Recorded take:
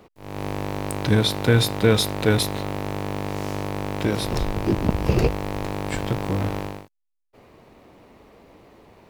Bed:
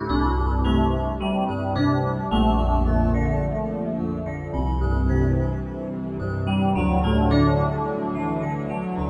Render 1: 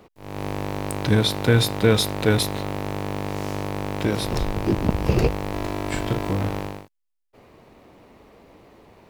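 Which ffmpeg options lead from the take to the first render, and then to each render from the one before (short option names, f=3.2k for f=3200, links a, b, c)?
-filter_complex "[0:a]asettb=1/sr,asplit=3[a][b][c];[a]atrim=end=5.494[d];[b]atrim=start=5.49:end=6.33,asetpts=PTS-STARTPTS,afade=t=in:d=0.004:c=qsin,afade=t=out:st=0.836:d=0.004:c=qsin,asplit=2[e][f];[f]adelay=37,volume=-6.5dB[g];[e][g]amix=inputs=2:normalize=0,atrim=end_sample=37044[h];[c]atrim=start=6.326[i];[d][h]acrossfade=d=0.004:c1=hsin:c2=qsin[j];[j][i]acrossfade=d=0.004:c1=qsin:c2=hsin"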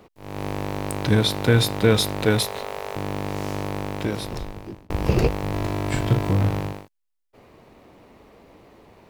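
-filter_complex "[0:a]asettb=1/sr,asplit=3[a][b][c];[a]atrim=end=2.244[d];[b]atrim=start=2.24:end=2.96,asetpts=PTS-STARTPTS,afade=t=in:d=0.004:c=qsin,afade=t=out:st=0.716:d=0.004:c=qsin,bandreject=f=50:t=h:w=6,bandreject=f=100:t=h:w=6,bandreject=f=150:t=h:w=6,bandreject=f=200:t=h:w=6,bandreject=f=250:t=h:w=6,bandreject=f=300:t=h:w=6,bandreject=f=350:t=h:w=6[e];[c]atrim=start=2.956[f];[d][e]acrossfade=d=0.004:c1=hsin:c2=qsin[g];[g][f]acrossfade=d=0.004:c1=qsin:c2=hsin,asettb=1/sr,asplit=3[h][i][j];[h]atrim=end=5.434[k];[i]atrim=start=5.43:end=6.73,asetpts=PTS-STARTPTS,afade=t=in:d=0.004:c=qsin,afade=t=out:st=1.296:d=0.004:c=qsin,equalizer=f=120:w=1.5:g=8[l];[j]atrim=start=6.726[m];[k][l]acrossfade=d=0.004:c1=hsin:c2=qsin[n];[n][m]acrossfade=d=0.004:c1=qsin:c2=hsin,asplit=2[o][p];[o]atrim=end=4.9,asetpts=PTS-STARTPTS,afade=t=out:st=3.73:d=1.17[q];[p]atrim=start=4.9,asetpts=PTS-STARTPTS,afade=t=in:d=0.004:c=hsin[r];[q][r]concat=n=2:v=0:a=1"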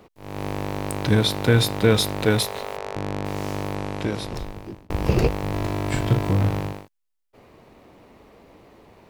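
-filter_complex "[0:a]asplit=3[a][b][c];[a]afade=t=out:st=2.76:d=0.02[d];[b]adynamicsmooth=sensitivity=3:basefreq=1.9k,afade=t=in:st=2.76:d=0.02,afade=t=out:st=3.24:d=0.02[e];[c]afade=t=in:st=3.24:d=0.02[f];[d][e][f]amix=inputs=3:normalize=0,asettb=1/sr,asplit=3[g][h][i];[g]atrim=end=3.754[j];[h]atrim=start=3.75:end=4.35,asetpts=PTS-STARTPTS,afade=t=in:d=0.004:c=qsin,afade=t=out:st=0.596:d=0.004:c=qsin,lowpass=9.7k[k];[i]atrim=start=4.346[l];[j][k]acrossfade=d=0.004:c1=hsin:c2=qsin[m];[m][l]acrossfade=d=0.004:c1=qsin:c2=hsin"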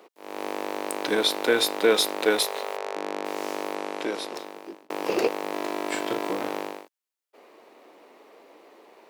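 -af "highpass=f=320:w=0.5412,highpass=f=320:w=1.3066"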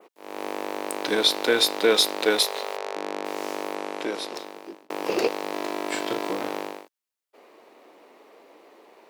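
-af "adynamicequalizer=threshold=0.0112:dfrequency=4500:dqfactor=1.2:tfrequency=4500:tqfactor=1.2:attack=5:release=100:ratio=0.375:range=2.5:mode=boostabove:tftype=bell"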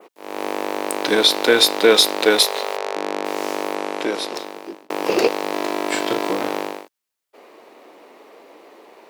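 -af "volume=6.5dB,alimiter=limit=-1dB:level=0:latency=1"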